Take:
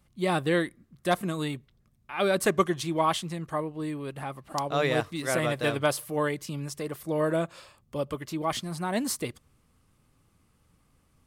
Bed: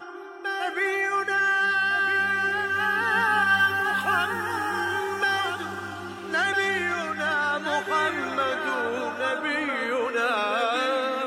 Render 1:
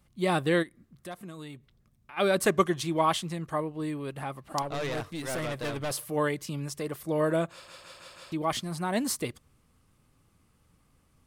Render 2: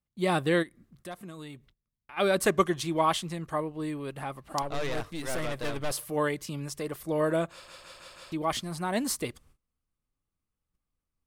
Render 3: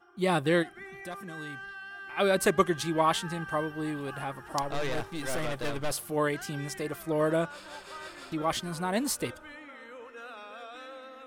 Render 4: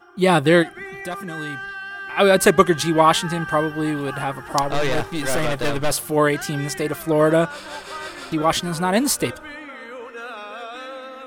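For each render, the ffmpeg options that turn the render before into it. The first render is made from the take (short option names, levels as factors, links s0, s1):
-filter_complex "[0:a]asplit=3[s0][s1][s2];[s0]afade=t=out:st=0.62:d=0.02[s3];[s1]acompressor=threshold=0.00355:ratio=2:attack=3.2:release=140:knee=1:detection=peak,afade=t=in:st=0.62:d=0.02,afade=t=out:st=2.16:d=0.02[s4];[s2]afade=t=in:st=2.16:d=0.02[s5];[s3][s4][s5]amix=inputs=3:normalize=0,asettb=1/sr,asplit=3[s6][s7][s8];[s6]atrim=end=4.624[s9];[s7]atrim=start=4.62:end=5.91,asetpts=PTS-STARTPTS,afade=t=in:d=0.004:c=qsin,afade=t=out:st=1.286:d=0.004:c=qsin,aeval=exprs='(tanh(28.2*val(0)+0.3)-tanh(0.3))/28.2':c=same[s10];[s8]atrim=start=5.906[s11];[s9][s10]acrossfade=d=0.004:c1=hsin:c2=qsin[s12];[s12][s11]acrossfade=d=0.004:c1=qsin:c2=hsin,asplit=6[s13][s14][s15][s16][s17][s18];[s13]atrim=end=7.682[s19];[s14]atrim=start=7.518:end=7.682[s20];[s15]atrim=start=7.518:end=7.682[s21];[s16]atrim=start=7.518:end=7.682[s22];[s17]atrim=start=7.518:end=7.682[s23];[s18]atrim=start=8.318[s24];[s19][s20]acrossfade=d=0.004:c1=hsin:c2=hsin[s25];[s25][s21]acrossfade=d=0.004:c1=hsin:c2=hsin[s26];[s26][s22]acrossfade=d=0.004:c1=hsin:c2=hsin[s27];[s27][s23]acrossfade=d=0.004:c1=hsin:c2=hsin[s28];[s28][s24]acrossfade=d=0.004:c1=hsin:c2=hsin"
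-af "agate=range=0.0708:threshold=0.00112:ratio=16:detection=peak,asubboost=boost=3:cutoff=54"
-filter_complex "[1:a]volume=0.1[s0];[0:a][s0]amix=inputs=2:normalize=0"
-af "volume=3.35,alimiter=limit=0.794:level=0:latency=1"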